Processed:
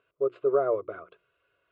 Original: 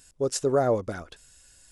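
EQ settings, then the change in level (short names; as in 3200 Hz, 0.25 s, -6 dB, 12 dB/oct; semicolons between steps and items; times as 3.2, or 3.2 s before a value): speaker cabinet 180–2500 Hz, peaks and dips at 270 Hz +4 dB, 400 Hz +8 dB, 700 Hz +8 dB, 1200 Hz +7 dB, 1800 Hz +6 dB; notches 60/120/180/240/300/360 Hz; fixed phaser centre 1200 Hz, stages 8; -5.5 dB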